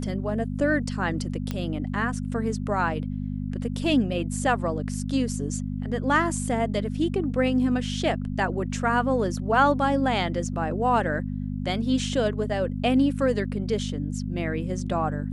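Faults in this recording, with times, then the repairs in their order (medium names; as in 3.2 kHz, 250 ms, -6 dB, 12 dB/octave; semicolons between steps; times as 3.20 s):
hum 50 Hz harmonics 5 -30 dBFS
1.51 s: pop -16 dBFS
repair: de-click; de-hum 50 Hz, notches 5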